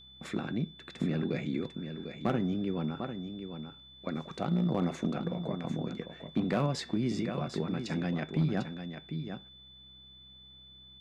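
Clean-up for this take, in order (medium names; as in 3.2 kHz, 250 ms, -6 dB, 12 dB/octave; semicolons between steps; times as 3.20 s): clip repair -21 dBFS; de-hum 64.7 Hz, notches 3; band-stop 3.5 kHz, Q 30; inverse comb 748 ms -8.5 dB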